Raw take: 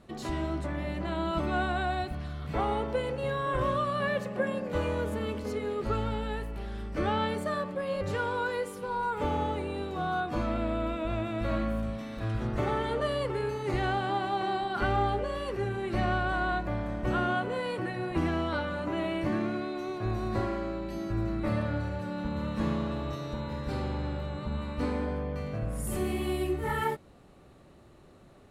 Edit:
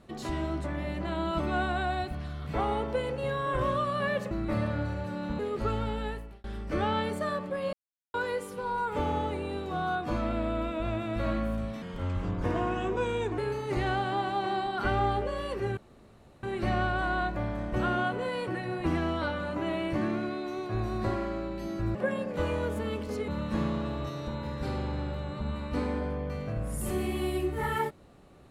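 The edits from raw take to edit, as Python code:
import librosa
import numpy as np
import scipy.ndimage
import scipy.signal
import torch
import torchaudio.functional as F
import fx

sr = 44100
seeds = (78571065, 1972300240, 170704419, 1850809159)

y = fx.edit(x, sr, fx.swap(start_s=4.31, length_s=1.33, other_s=21.26, other_length_s=1.08),
    fx.fade_out_span(start_s=6.32, length_s=0.37),
    fx.silence(start_s=7.98, length_s=0.41),
    fx.speed_span(start_s=12.07, length_s=1.28, speed=0.82),
    fx.insert_room_tone(at_s=15.74, length_s=0.66), tone=tone)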